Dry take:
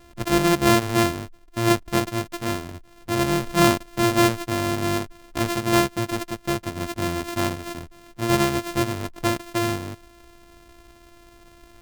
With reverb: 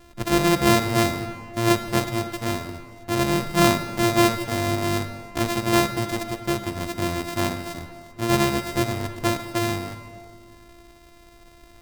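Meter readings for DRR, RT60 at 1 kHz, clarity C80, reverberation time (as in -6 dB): 9.0 dB, 2.1 s, 10.5 dB, 2.1 s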